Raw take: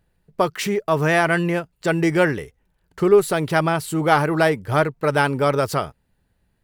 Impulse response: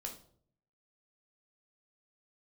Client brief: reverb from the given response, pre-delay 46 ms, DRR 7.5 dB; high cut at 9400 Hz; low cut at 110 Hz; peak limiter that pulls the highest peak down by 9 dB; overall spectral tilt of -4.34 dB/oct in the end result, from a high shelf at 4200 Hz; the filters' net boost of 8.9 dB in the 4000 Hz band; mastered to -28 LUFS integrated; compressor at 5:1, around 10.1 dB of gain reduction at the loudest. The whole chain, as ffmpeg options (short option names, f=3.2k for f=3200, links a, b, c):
-filter_complex "[0:a]highpass=110,lowpass=9.4k,equalizer=f=4k:t=o:g=7.5,highshelf=f=4.2k:g=8,acompressor=threshold=-20dB:ratio=5,alimiter=limit=-15.5dB:level=0:latency=1,asplit=2[a][b];[1:a]atrim=start_sample=2205,adelay=46[c];[b][c]afir=irnorm=-1:irlink=0,volume=-5.5dB[d];[a][d]amix=inputs=2:normalize=0,volume=-1.5dB"